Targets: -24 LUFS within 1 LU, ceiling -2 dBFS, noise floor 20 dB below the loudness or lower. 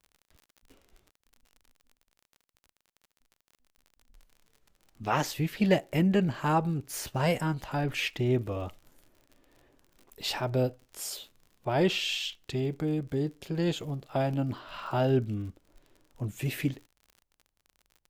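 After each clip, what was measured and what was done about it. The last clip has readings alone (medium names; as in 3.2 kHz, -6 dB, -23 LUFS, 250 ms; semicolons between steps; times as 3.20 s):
tick rate 47 per s; loudness -30.0 LUFS; peak level -10.0 dBFS; loudness target -24.0 LUFS
-> de-click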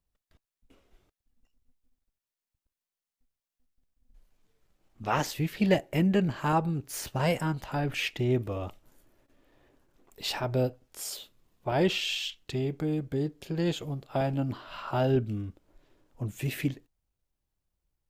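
tick rate 0 per s; loudness -30.0 LUFS; peak level -10.0 dBFS; loudness target -24.0 LUFS
-> trim +6 dB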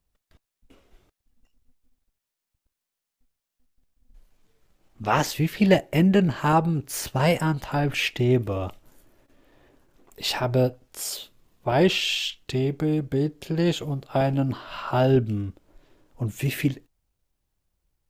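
loudness -24.0 LUFS; peak level -4.0 dBFS; noise floor -85 dBFS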